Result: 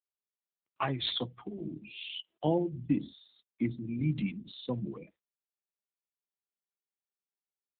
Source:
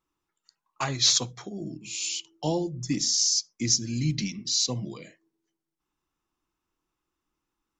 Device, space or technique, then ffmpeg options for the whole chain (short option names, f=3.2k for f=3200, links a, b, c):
mobile call with aggressive noise cancelling: -af "highpass=140,afftdn=nr=31:nf=-39" -ar 8000 -c:a libopencore_amrnb -b:a 7950